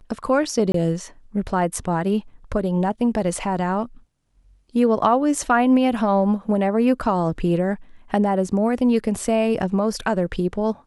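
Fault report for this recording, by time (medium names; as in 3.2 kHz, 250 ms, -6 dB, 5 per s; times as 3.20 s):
0.72–0.74 s: dropout 23 ms
5.35 s: dropout 2.4 ms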